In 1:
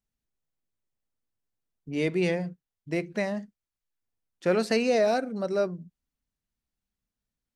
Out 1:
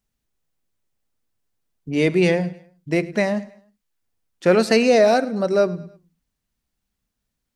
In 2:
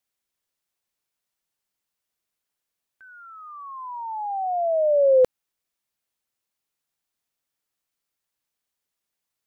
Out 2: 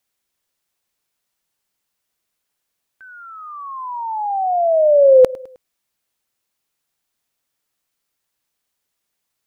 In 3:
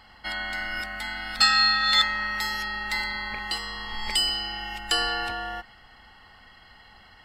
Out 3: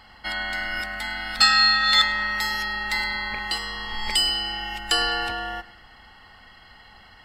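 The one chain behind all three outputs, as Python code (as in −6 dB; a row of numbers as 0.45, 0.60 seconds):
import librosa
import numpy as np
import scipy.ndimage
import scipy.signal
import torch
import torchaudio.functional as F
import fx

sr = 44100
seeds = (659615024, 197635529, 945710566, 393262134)

y = fx.echo_feedback(x, sr, ms=104, feedback_pct=43, wet_db=-20)
y = librosa.util.normalize(y) * 10.0 ** (-3 / 20.0)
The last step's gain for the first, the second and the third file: +8.5, +7.0, +2.5 decibels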